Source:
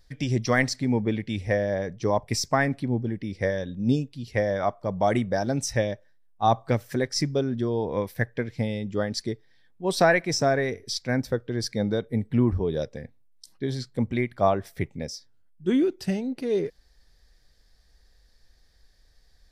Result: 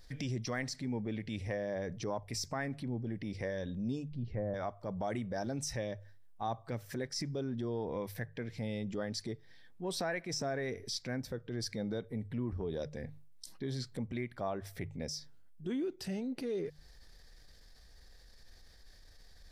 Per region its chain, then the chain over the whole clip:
4.11–4.54 treble ducked by the level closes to 1700 Hz, closed at -26 dBFS + LPF 2500 Hz 6 dB/oct + tilt -3 dB/oct
whole clip: notches 50/100/150 Hz; compressor 5:1, threshold -38 dBFS; transient shaper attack -5 dB, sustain +3 dB; gain +3 dB

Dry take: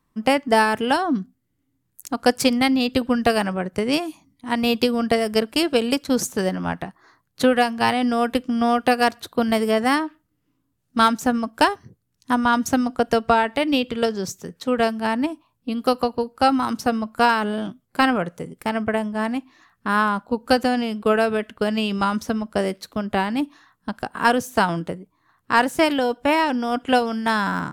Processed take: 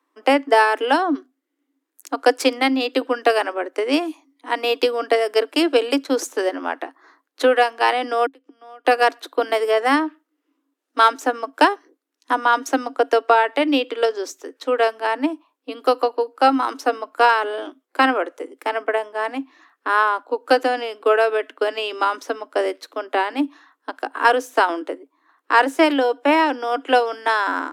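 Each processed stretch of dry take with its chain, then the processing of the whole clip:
8.26–8.85 flipped gate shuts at -19 dBFS, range -32 dB + three-band squash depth 100%
whole clip: Chebyshev high-pass 270 Hz, order 8; high shelf 6000 Hz -9.5 dB; notch 4500 Hz, Q 29; gain +3.5 dB

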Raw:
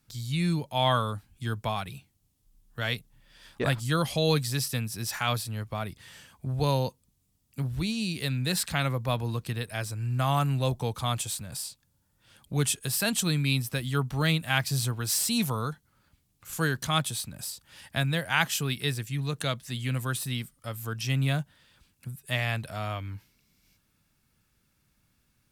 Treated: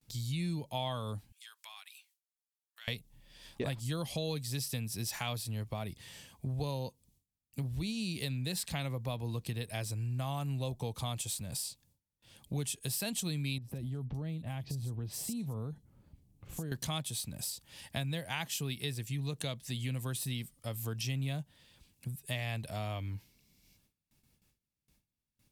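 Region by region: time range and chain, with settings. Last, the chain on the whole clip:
1.32–2.88 HPF 1200 Hz 24 dB/oct + compressor 2.5:1, threshold -49 dBFS
13.58–16.72 tilt shelf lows +8 dB, about 890 Hz + compressor 8:1, threshold -34 dBFS + bands offset in time lows, highs 40 ms, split 4200 Hz
whole clip: gate with hold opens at -59 dBFS; bell 1400 Hz -10.5 dB 0.72 oct; compressor 4:1, threshold -34 dBFS

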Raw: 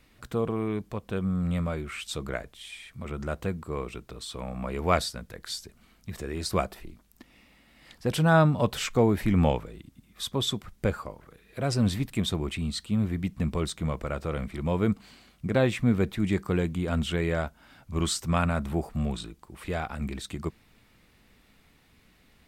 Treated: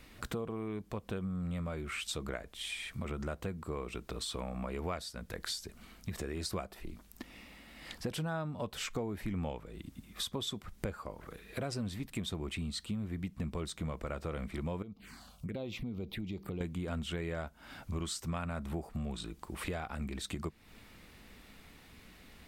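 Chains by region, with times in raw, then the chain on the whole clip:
14.82–16.61 envelope phaser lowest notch 280 Hz, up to 1700 Hz, full sweep at -22.5 dBFS + compressor 2.5:1, threshold -43 dBFS
whole clip: bell 130 Hz -6 dB 0.24 oct; compressor 6:1, threshold -41 dBFS; gain +5 dB

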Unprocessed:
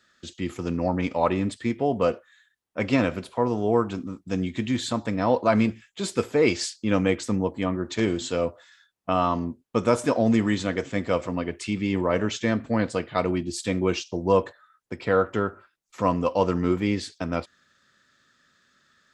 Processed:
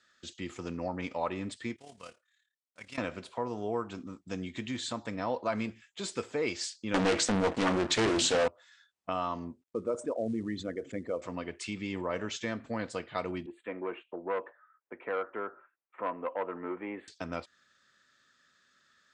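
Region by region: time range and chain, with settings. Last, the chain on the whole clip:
1.76–2.98 block floating point 5-bit + passive tone stack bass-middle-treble 5-5-5 + AM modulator 36 Hz, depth 45%
6.94–8.48 de-hum 165.1 Hz, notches 4 + sample leveller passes 5 + Doppler distortion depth 0.6 ms
9.62–11.22 formant sharpening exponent 2 + companded quantiser 8-bit
13.46–17.08 Butterworth band-stop 5400 Hz, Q 0.66 + three-band isolator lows -22 dB, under 260 Hz, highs -24 dB, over 2600 Hz + core saturation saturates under 770 Hz
whole clip: steep low-pass 9400 Hz 48 dB/oct; low shelf 410 Hz -7 dB; compressor 1.5:1, threshold -33 dBFS; gain -3.5 dB

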